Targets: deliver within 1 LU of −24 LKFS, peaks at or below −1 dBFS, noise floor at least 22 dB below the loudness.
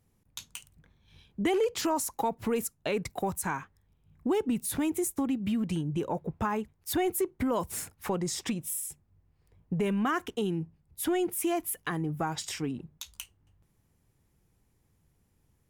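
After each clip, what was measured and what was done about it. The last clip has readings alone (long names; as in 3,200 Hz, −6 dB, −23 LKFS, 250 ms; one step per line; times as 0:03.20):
integrated loudness −31.5 LKFS; sample peak −17.5 dBFS; target loudness −24.0 LKFS
→ level +7.5 dB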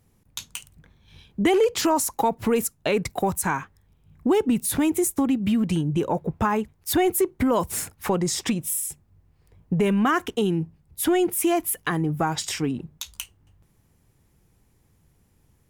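integrated loudness −24.0 LKFS; sample peak −10.0 dBFS; background noise floor −63 dBFS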